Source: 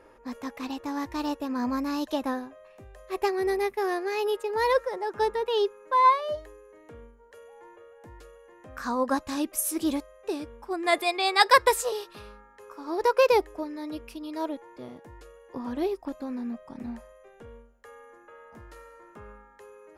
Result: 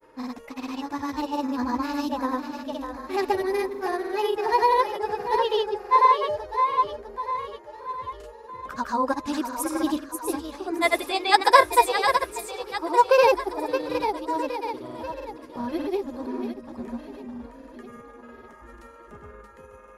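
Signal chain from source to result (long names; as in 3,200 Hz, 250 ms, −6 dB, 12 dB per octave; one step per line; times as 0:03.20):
spectral magnitudes quantised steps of 15 dB
dynamic equaliser 940 Hz, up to +7 dB, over −43 dBFS, Q 5.6
on a send: echo with a time of its own for lows and highs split 380 Hz, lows 470 ms, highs 638 ms, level −7 dB
on the sum: granular cloud, pitch spread up and down by 0 semitones
level +2.5 dB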